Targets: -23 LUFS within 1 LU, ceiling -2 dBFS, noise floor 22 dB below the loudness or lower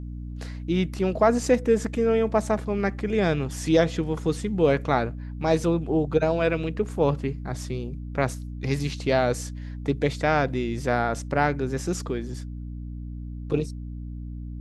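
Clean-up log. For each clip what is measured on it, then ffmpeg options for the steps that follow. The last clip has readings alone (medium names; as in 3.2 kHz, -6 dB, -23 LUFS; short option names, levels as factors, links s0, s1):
hum 60 Hz; highest harmonic 300 Hz; hum level -32 dBFS; loudness -25.0 LUFS; peak level -6.5 dBFS; loudness target -23.0 LUFS
-> -af "bandreject=f=60:t=h:w=6,bandreject=f=120:t=h:w=6,bandreject=f=180:t=h:w=6,bandreject=f=240:t=h:w=6,bandreject=f=300:t=h:w=6"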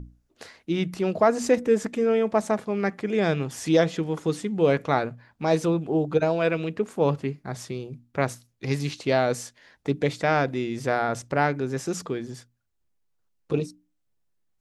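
hum not found; loudness -25.5 LUFS; peak level -7.0 dBFS; loudness target -23.0 LUFS
-> -af "volume=1.33"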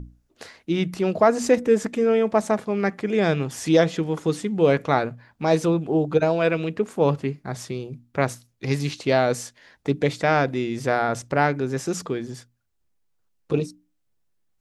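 loudness -23.0 LUFS; peak level -4.5 dBFS; noise floor -70 dBFS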